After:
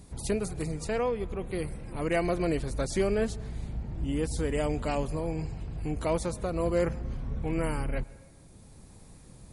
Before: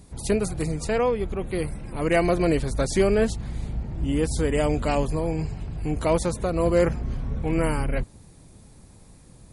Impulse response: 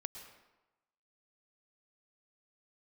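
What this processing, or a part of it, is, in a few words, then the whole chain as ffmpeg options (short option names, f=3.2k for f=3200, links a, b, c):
ducked reverb: -filter_complex "[0:a]asplit=3[a][b][c];[1:a]atrim=start_sample=2205[d];[b][d]afir=irnorm=-1:irlink=0[e];[c]apad=whole_len=420161[f];[e][f]sidechaincompress=threshold=-33dB:ratio=8:attack=16:release=929,volume=4.5dB[g];[a][g]amix=inputs=2:normalize=0,volume=-8dB"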